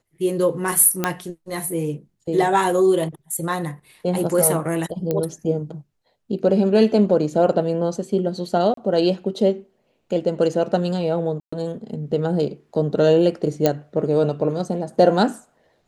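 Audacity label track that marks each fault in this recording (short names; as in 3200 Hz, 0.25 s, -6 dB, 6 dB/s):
1.040000	1.040000	pop -5 dBFS
5.110000	5.110000	pop -10 dBFS
8.740000	8.770000	gap 33 ms
11.400000	11.530000	gap 0.125 s
13.660000	13.660000	pop -4 dBFS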